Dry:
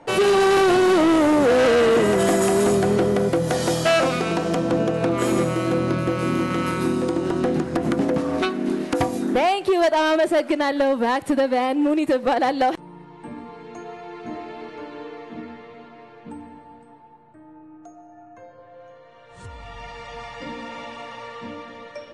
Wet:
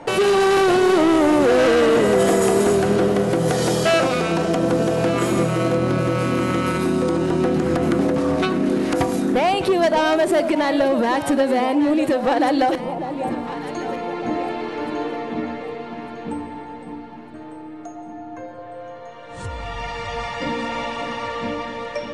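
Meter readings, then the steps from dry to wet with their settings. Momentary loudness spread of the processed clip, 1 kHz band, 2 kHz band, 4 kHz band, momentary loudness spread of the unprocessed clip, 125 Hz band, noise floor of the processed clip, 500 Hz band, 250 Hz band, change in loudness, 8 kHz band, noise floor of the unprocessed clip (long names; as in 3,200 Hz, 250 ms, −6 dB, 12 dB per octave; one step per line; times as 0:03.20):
20 LU, +2.0 dB, +1.5 dB, +1.5 dB, 21 LU, +3.0 dB, −36 dBFS, +2.0 dB, +2.0 dB, +0.5 dB, +1.5 dB, −47 dBFS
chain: brickwall limiter −22 dBFS, peak gain reduction 8 dB
delay that swaps between a low-pass and a high-pass 601 ms, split 890 Hz, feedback 64%, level −8 dB
level +8.5 dB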